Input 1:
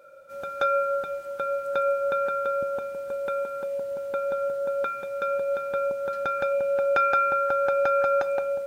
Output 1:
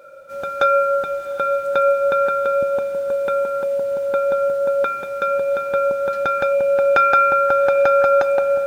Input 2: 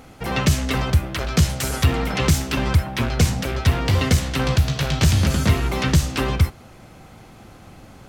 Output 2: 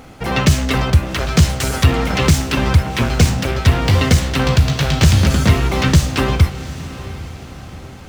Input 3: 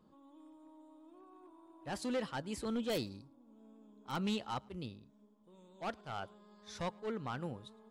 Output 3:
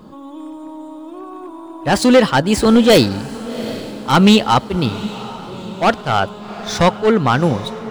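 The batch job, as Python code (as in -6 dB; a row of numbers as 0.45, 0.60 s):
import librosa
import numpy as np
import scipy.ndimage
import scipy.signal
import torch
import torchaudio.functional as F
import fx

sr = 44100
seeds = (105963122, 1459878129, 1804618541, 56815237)

y = scipy.ndimage.median_filter(x, 3, mode='constant')
y = fx.echo_diffused(y, sr, ms=763, feedback_pct=45, wet_db=-15.0)
y = y * 10.0 ** (-2 / 20.0) / np.max(np.abs(y))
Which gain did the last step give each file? +8.0, +5.0, +26.0 dB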